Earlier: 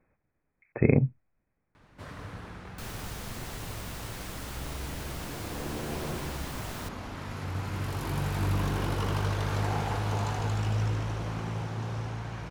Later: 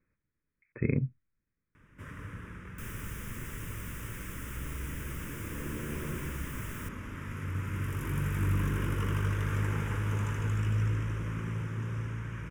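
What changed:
speech −5.5 dB
master: add phaser with its sweep stopped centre 1,800 Hz, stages 4

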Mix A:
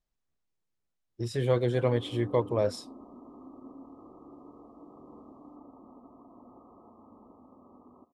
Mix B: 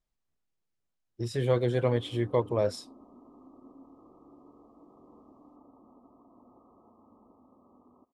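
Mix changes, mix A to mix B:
background −3.0 dB
reverb: off

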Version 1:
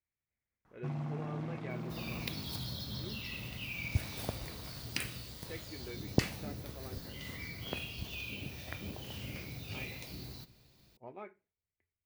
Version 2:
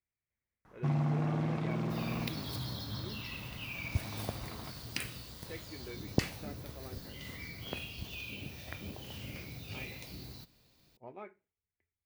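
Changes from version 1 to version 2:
first sound +8.5 dB
reverb: off

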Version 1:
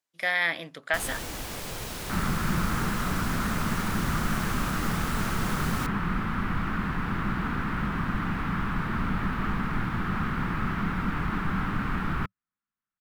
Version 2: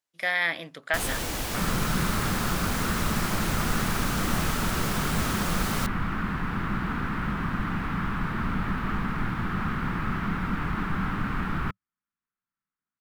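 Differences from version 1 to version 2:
first sound +5.0 dB
second sound: entry −0.55 s

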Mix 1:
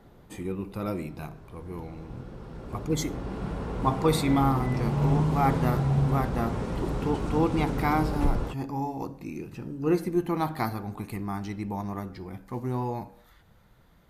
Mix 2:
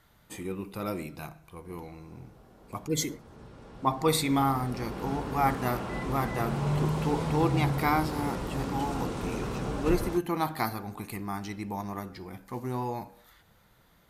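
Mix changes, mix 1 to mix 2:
background: entry +1.65 s
master: add spectral tilt +1.5 dB per octave

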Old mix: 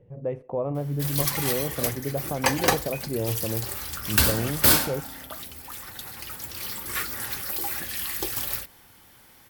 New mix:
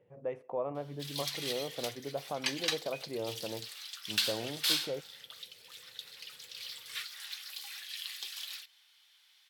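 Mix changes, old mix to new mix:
background: add resonant band-pass 3,600 Hz, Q 2.3
master: add high-pass filter 1,000 Hz 6 dB per octave

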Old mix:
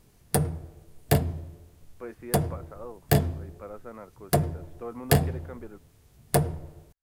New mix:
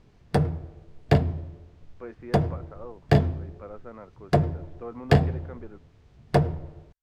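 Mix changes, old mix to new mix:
background +3.0 dB
master: add high-frequency loss of the air 170 metres

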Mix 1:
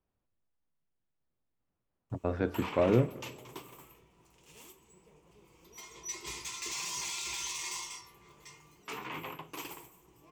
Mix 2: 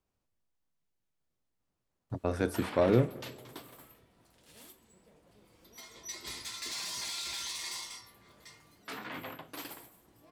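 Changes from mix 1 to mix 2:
speech: remove high-frequency loss of the air 270 metres
background: remove EQ curve with evenly spaced ripples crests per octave 0.73, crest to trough 10 dB

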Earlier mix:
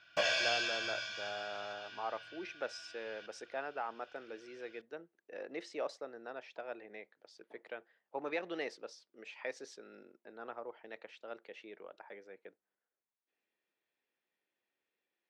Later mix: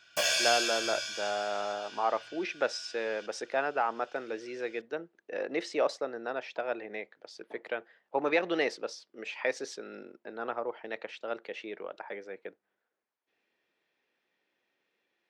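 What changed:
speech +10.5 dB
background: remove high-frequency loss of the air 190 metres

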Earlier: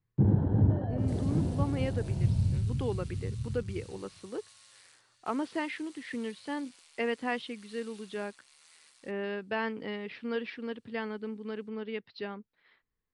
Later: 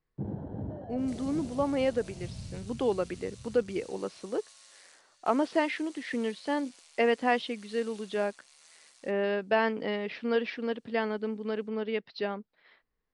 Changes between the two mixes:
speech +4.0 dB
first sound −9.5 dB
master: add graphic EQ with 15 bands 100 Hz −8 dB, 630 Hz +7 dB, 6,300 Hz +5 dB

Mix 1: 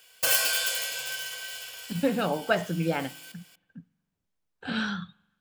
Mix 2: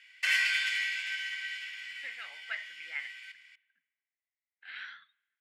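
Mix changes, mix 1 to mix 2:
background +9.0 dB
master: add four-pole ladder band-pass 2,100 Hz, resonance 85%

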